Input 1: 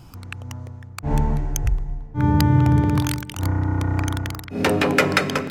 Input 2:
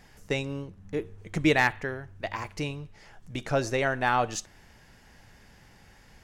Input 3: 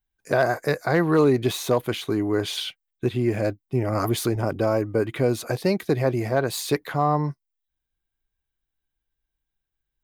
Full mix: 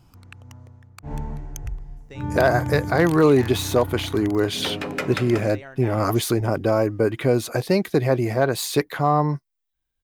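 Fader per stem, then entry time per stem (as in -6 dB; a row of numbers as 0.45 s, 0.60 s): -10.0 dB, -14.5 dB, +2.5 dB; 0.00 s, 1.80 s, 2.05 s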